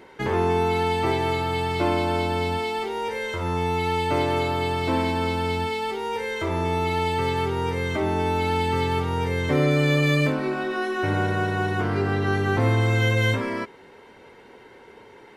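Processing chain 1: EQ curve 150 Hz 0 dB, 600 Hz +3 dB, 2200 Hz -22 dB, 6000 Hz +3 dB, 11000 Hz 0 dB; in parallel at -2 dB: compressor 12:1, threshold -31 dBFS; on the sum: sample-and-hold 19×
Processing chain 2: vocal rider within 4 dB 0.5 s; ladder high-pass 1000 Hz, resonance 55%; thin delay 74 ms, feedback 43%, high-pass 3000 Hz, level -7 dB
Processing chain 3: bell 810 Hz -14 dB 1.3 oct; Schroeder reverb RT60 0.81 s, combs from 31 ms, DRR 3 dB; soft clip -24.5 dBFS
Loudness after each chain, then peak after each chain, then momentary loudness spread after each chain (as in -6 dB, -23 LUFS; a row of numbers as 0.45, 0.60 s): -22.0, -35.5, -29.5 LUFS; -8.5, -23.5, -24.5 dBFS; 5, 4, 4 LU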